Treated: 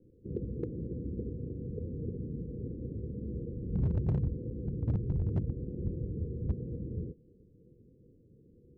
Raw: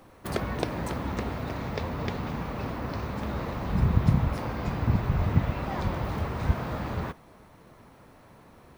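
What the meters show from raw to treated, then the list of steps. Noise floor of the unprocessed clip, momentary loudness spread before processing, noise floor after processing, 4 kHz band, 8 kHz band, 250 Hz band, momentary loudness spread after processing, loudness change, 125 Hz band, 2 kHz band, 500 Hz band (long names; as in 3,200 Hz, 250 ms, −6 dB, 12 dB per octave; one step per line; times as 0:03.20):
−54 dBFS, 8 LU, −62 dBFS, below −30 dB, can't be measured, −6.0 dB, 8 LU, −6.5 dB, −5.5 dB, below −30 dB, −7.5 dB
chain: Chebyshev low-pass with heavy ripple 500 Hz, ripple 3 dB
hard clipping −20.5 dBFS, distortion −11 dB
level −3.5 dB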